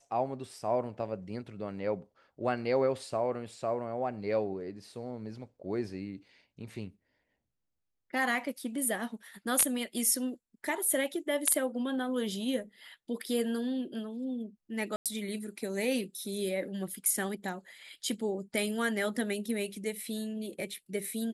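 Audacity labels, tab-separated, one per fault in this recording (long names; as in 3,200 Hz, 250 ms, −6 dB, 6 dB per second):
14.960000	15.060000	drop-out 97 ms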